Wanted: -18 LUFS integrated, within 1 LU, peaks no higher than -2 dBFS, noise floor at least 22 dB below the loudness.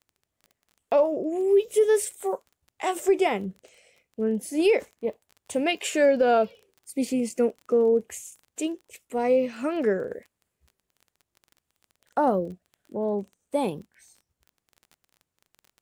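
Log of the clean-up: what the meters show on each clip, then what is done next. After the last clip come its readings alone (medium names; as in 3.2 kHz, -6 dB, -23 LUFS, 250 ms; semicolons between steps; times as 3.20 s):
tick rate 20 per s; loudness -25.5 LUFS; peak level -12.0 dBFS; loudness target -18.0 LUFS
-> de-click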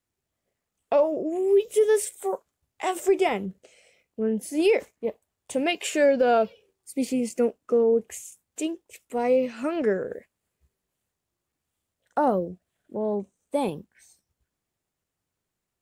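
tick rate 0.063 per s; loudness -25.5 LUFS; peak level -12.0 dBFS; loudness target -18.0 LUFS
-> trim +7.5 dB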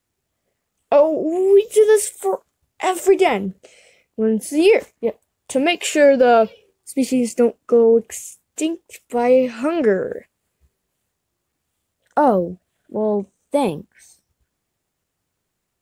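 loudness -18.0 LUFS; peak level -4.5 dBFS; noise floor -77 dBFS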